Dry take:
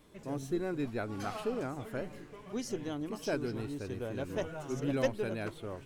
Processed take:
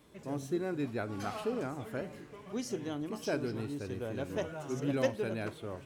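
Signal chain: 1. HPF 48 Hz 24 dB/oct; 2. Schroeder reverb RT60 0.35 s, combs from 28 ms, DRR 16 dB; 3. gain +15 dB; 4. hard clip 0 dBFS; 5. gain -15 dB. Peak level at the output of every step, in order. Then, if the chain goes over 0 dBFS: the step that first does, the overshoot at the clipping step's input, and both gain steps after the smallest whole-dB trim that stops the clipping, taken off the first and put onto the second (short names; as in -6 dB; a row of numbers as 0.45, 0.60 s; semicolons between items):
-17.0, -17.0, -2.0, -2.0, -17.0 dBFS; no overload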